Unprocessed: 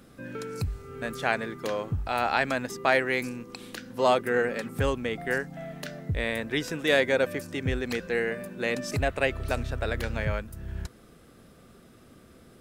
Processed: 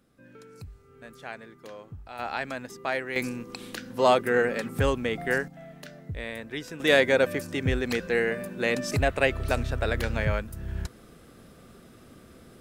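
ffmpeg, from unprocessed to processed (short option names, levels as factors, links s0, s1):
-af "asetnsamples=n=441:p=0,asendcmd='2.19 volume volume -6.5dB;3.16 volume volume 2dB;5.48 volume volume -6.5dB;6.8 volume volume 2.5dB',volume=0.224"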